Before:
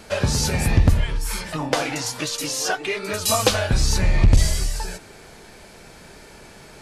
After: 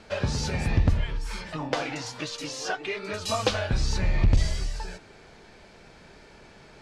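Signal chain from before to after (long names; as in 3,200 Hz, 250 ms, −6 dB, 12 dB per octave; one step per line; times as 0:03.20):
low-pass filter 5,100 Hz 12 dB per octave
level −6 dB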